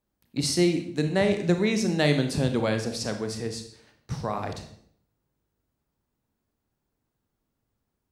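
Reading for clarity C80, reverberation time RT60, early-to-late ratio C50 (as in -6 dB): 12.5 dB, 0.65 s, 9.0 dB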